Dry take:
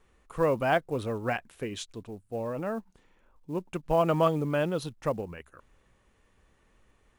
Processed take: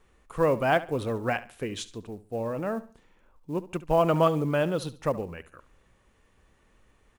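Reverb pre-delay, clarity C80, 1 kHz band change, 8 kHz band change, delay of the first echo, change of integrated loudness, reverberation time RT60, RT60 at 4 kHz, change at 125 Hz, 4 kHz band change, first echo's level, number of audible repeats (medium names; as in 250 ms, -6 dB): no reverb, no reverb, +2.0 dB, +2.0 dB, 70 ms, +2.0 dB, no reverb, no reverb, +2.0 dB, +2.0 dB, -16.5 dB, 2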